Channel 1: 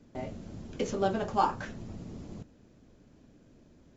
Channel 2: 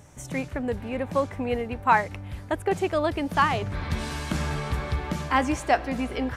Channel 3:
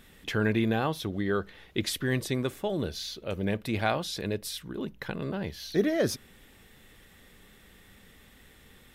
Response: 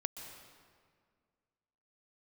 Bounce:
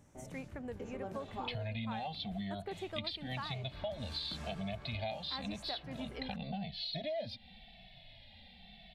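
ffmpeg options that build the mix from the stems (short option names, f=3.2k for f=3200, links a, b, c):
-filter_complex "[0:a]equalizer=f=4.2k:w=0.87:g=-13.5,volume=-12.5dB[a];[1:a]volume=-14.5dB[b];[2:a]firequalizer=gain_entry='entry(220,0);entry(350,-30);entry(680,12);entry(1200,-24);entry(2200,2);entry(4300,9);entry(6300,-29)':delay=0.05:min_phase=1,asplit=2[c][d];[d]adelay=2.2,afreqshift=-0.93[e];[c][e]amix=inputs=2:normalize=1,adelay=1200,volume=1.5dB[f];[a][b][f]amix=inputs=3:normalize=0,acompressor=threshold=-37dB:ratio=6"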